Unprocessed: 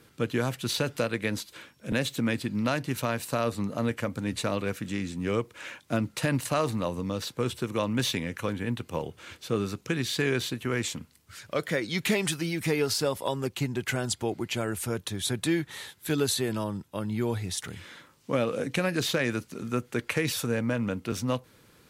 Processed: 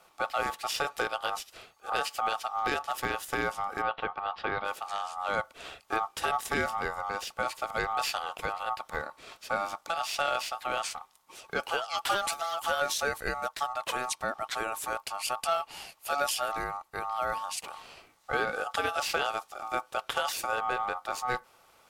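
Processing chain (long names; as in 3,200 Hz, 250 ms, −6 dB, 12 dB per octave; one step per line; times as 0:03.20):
0:03.82–0:04.65: low-pass filter 2,900 Hz 24 dB per octave
ring modulation 1,000 Hz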